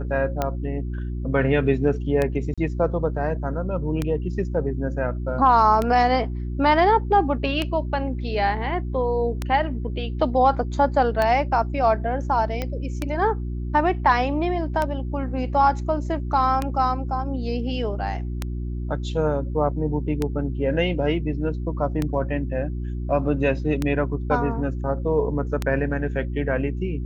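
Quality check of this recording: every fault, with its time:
hum 60 Hz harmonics 6 -28 dBFS
tick 33 1/3 rpm -10 dBFS
2.54–2.58 gap 36 ms
12.62 pop -13 dBFS

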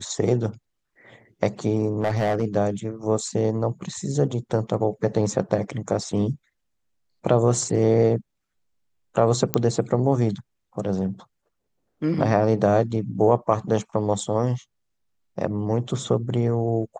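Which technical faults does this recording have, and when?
2.01–2.43 clipped -17 dBFS
9.54 pop -4 dBFS

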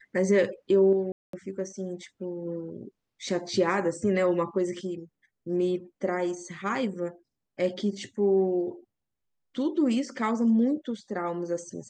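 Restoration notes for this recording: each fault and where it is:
1.12–1.33 gap 0.213 s

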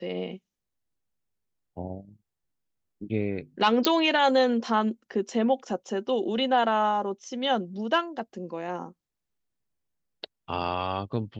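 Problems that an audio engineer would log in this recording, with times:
3.85 pop -6 dBFS

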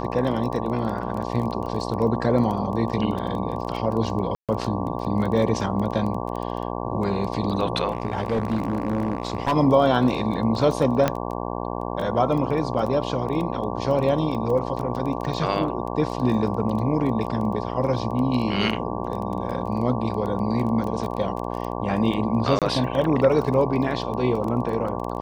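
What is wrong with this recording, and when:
buzz 60 Hz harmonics 19 -29 dBFS
crackle 14/s -28 dBFS
4.35–4.49 gap 0.137 s
7.92–9.53 clipped -18.5 dBFS
11.08 pop -7 dBFS
22.59–22.62 gap 27 ms

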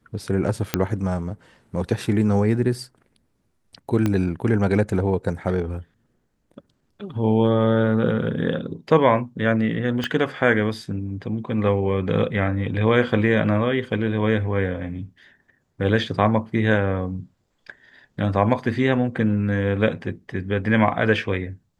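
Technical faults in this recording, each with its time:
0.74 pop -3 dBFS
4.06 pop -10 dBFS
10.04 pop -12 dBFS

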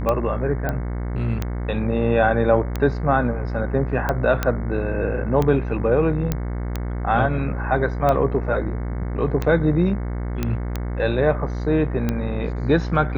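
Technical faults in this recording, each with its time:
buzz 60 Hz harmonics 37 -26 dBFS
tick 45 rpm -10 dBFS
0.69 pop -12 dBFS
4.43 pop -7 dBFS
6.32 pop -8 dBFS
10.43 pop -10 dBFS

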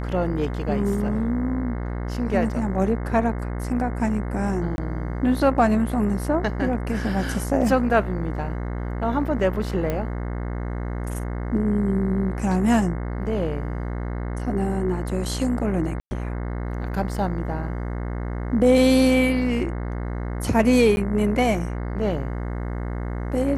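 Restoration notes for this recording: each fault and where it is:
buzz 60 Hz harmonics 36 -28 dBFS
4.76–4.78 gap 21 ms
9.9 pop -13 dBFS
16–16.11 gap 0.11 s
20.96–20.97 gap 11 ms

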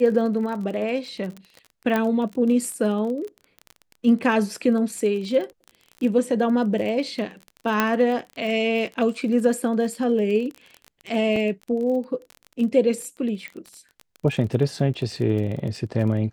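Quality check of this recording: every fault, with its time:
crackle 28/s -30 dBFS
1.96 pop -11 dBFS
7.8 pop -6 dBFS
11.36 gap 3.1 ms
13.48 pop -20 dBFS

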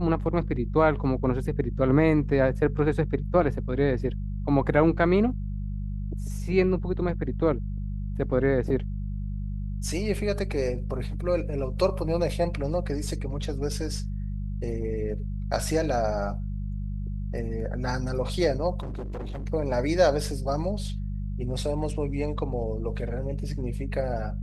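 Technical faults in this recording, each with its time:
hum 50 Hz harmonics 4 -31 dBFS
18.8–19.46 clipped -30.5 dBFS

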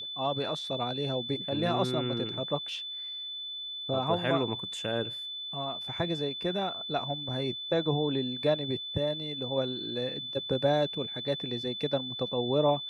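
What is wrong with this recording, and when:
tone 3500 Hz -36 dBFS

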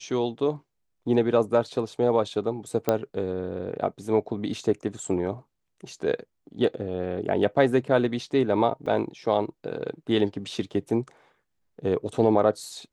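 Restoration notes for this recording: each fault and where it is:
2.89 pop -9 dBFS
8.86 gap 4.7 ms

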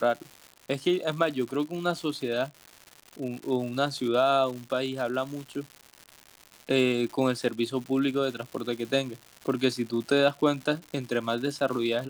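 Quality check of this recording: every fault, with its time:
crackle 240/s -35 dBFS

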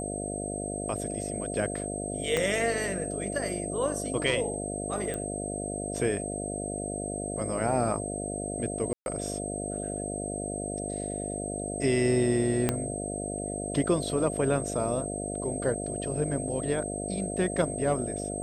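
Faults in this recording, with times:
buzz 50 Hz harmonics 14 -35 dBFS
tone 8300 Hz -37 dBFS
2.37 pop -13 dBFS
5.14 pop -20 dBFS
8.93–9.06 gap 0.131 s
12.69 pop -10 dBFS

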